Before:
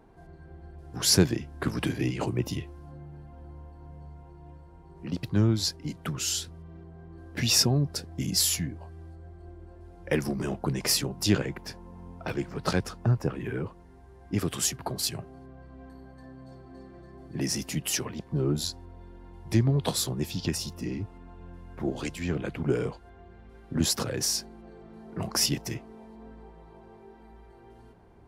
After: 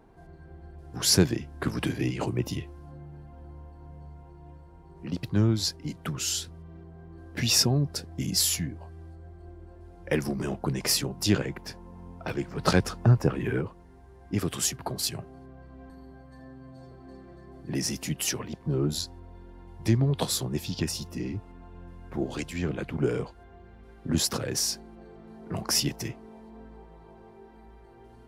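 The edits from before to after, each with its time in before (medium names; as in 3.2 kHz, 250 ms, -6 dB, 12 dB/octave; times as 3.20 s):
12.58–13.61 s: gain +4.5 dB
15.90–16.58 s: stretch 1.5×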